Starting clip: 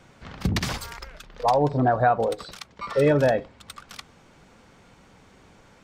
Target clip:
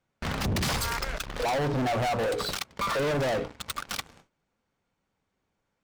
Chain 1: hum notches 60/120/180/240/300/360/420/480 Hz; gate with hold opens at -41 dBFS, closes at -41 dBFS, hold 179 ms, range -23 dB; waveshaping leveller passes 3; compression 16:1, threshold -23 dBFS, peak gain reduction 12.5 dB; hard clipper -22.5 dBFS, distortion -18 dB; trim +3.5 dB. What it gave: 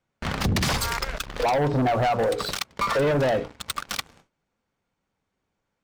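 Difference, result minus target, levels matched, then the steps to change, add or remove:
hard clipper: distortion -9 dB
change: hard clipper -29 dBFS, distortion -9 dB

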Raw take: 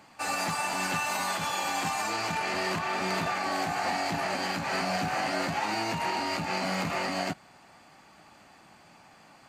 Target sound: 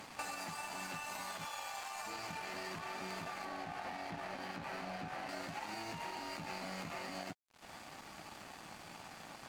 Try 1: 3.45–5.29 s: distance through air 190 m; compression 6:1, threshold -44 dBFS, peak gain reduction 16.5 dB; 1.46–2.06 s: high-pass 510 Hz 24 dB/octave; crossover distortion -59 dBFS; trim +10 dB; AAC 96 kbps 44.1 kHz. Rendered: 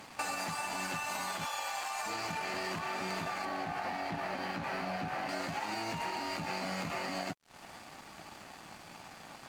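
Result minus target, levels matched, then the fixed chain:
compression: peak gain reduction -5.5 dB
3.45–5.29 s: distance through air 190 m; compression 6:1, threshold -50.5 dBFS, peak gain reduction 22 dB; 1.46–2.06 s: high-pass 510 Hz 24 dB/octave; crossover distortion -59 dBFS; trim +10 dB; AAC 96 kbps 44.1 kHz

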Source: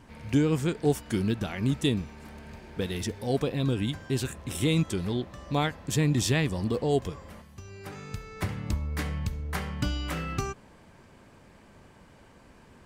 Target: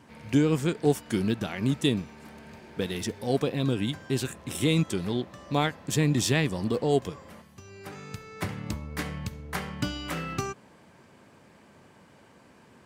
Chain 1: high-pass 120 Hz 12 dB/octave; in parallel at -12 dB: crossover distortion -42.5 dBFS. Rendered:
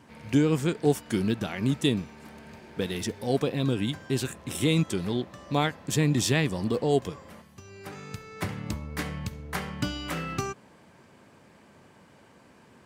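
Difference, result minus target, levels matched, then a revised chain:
crossover distortion: distortion -5 dB
high-pass 120 Hz 12 dB/octave; in parallel at -12 dB: crossover distortion -36 dBFS

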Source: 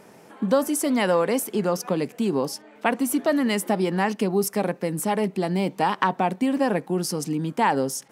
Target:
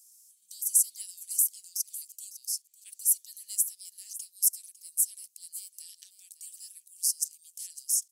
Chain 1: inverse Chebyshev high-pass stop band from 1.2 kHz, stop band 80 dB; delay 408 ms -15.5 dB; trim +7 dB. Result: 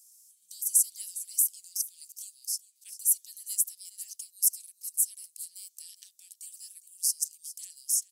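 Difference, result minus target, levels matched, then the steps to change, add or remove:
echo 145 ms early
change: delay 553 ms -15.5 dB

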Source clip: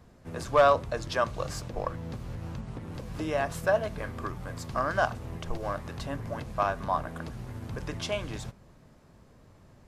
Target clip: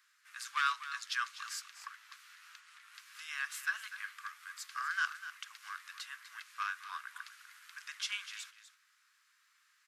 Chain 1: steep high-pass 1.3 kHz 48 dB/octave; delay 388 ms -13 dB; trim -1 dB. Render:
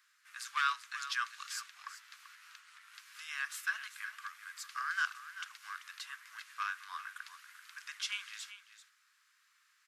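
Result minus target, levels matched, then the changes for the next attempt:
echo 140 ms late
change: delay 248 ms -13 dB

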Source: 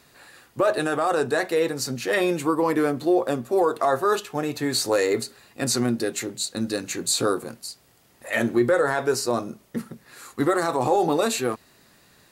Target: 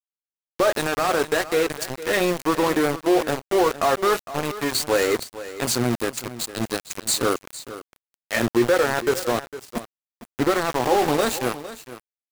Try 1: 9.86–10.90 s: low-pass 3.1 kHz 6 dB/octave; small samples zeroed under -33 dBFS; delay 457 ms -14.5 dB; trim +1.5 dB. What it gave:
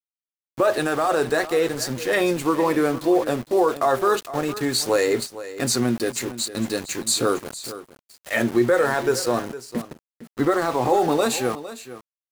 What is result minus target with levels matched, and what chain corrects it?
small samples zeroed: distortion -12 dB
9.86–10.90 s: low-pass 3.1 kHz 6 dB/octave; small samples zeroed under -23 dBFS; delay 457 ms -14.5 dB; trim +1.5 dB

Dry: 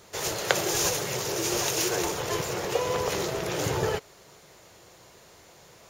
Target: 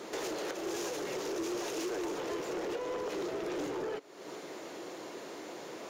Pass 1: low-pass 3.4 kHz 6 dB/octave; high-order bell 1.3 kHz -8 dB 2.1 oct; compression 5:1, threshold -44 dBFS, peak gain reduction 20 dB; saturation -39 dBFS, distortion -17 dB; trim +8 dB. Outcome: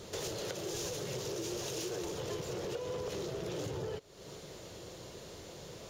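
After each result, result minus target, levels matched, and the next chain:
1 kHz band -4.0 dB; 250 Hz band -3.0 dB
low-pass 3.4 kHz 6 dB/octave; compression 5:1, threshold -44 dBFS, peak gain reduction 23 dB; saturation -39 dBFS, distortion -16 dB; trim +8 dB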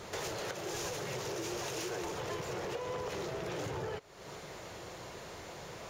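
250 Hz band -4.0 dB
low-pass 3.4 kHz 6 dB/octave; compression 5:1, threshold -44 dBFS, peak gain reduction 23 dB; resonant high-pass 290 Hz, resonance Q 3.1; saturation -39 dBFS, distortion -13 dB; trim +8 dB

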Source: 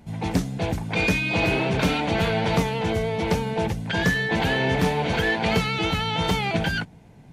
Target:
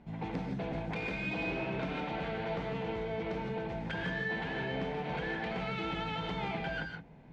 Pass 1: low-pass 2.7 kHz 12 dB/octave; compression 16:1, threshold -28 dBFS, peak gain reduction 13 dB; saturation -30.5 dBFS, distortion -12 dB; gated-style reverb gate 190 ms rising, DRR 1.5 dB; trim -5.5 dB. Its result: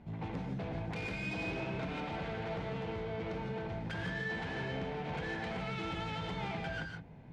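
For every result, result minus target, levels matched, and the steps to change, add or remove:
saturation: distortion +9 dB; 125 Hz band +2.5 dB
change: saturation -23 dBFS, distortion -22 dB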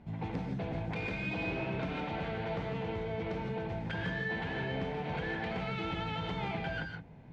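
125 Hz band +2.5 dB
add after low-pass: peaking EQ 95 Hz -11.5 dB 0.63 oct

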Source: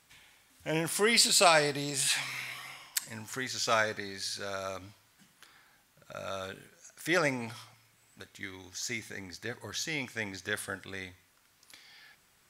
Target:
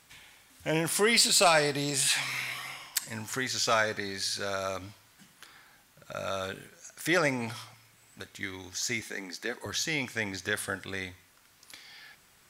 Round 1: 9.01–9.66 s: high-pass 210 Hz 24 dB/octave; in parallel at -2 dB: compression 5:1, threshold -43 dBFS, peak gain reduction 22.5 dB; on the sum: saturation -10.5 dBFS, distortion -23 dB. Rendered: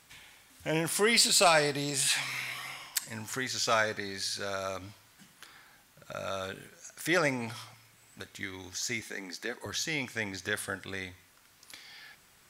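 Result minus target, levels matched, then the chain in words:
compression: peak gain reduction +8 dB
9.01–9.66 s: high-pass 210 Hz 24 dB/octave; in parallel at -2 dB: compression 5:1, threshold -33 dBFS, peak gain reduction 14.5 dB; on the sum: saturation -10.5 dBFS, distortion -22 dB

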